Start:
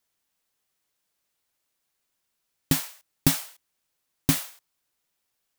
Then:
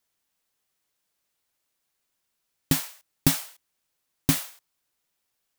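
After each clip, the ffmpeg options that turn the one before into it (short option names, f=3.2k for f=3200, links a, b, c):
-af anull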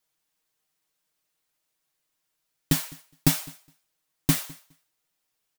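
-af "aecho=1:1:6.4:0.65,aecho=1:1:207|414:0.0668|0.01,volume=-2dB"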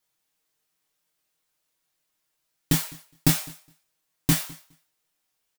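-filter_complex "[0:a]asplit=2[a][b];[b]adelay=24,volume=-4dB[c];[a][c]amix=inputs=2:normalize=0"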